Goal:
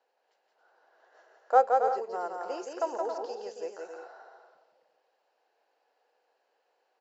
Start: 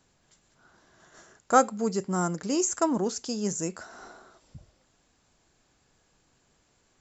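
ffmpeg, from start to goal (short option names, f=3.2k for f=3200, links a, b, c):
-af "highpass=f=480:w=0.5412,highpass=f=480:w=1.3066,equalizer=f=490:t=q:w=4:g=8,equalizer=f=790:t=q:w=4:g=7,equalizer=f=1.2k:t=q:w=4:g=-6,equalizer=f=2.2k:t=q:w=4:g=-6,equalizer=f=3.5k:t=q:w=4:g=-10,lowpass=f=4k:w=0.5412,lowpass=f=4k:w=1.3066,aecho=1:1:170|272|333.2|369.9|392:0.631|0.398|0.251|0.158|0.1,volume=-5dB" -ar 48000 -c:a libmp3lame -b:a 80k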